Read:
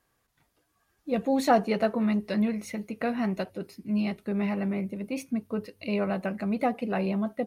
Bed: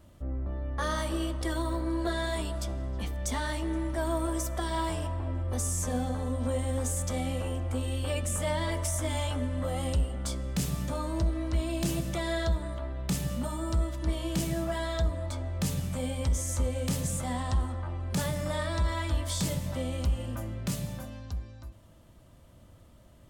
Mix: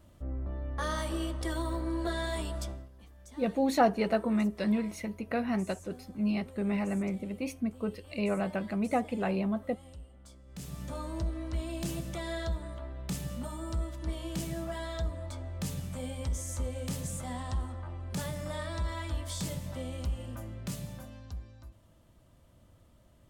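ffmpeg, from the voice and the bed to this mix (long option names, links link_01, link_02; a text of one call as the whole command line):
ffmpeg -i stem1.wav -i stem2.wav -filter_complex "[0:a]adelay=2300,volume=-2.5dB[link_01];[1:a]volume=12.5dB,afade=type=out:start_time=2.62:duration=0.27:silence=0.125893,afade=type=in:start_time=10.46:duration=0.51:silence=0.177828[link_02];[link_01][link_02]amix=inputs=2:normalize=0" out.wav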